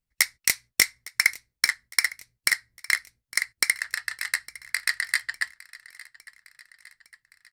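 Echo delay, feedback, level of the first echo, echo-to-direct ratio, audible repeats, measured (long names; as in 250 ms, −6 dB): 858 ms, 56%, −20.5 dB, −19.0 dB, 3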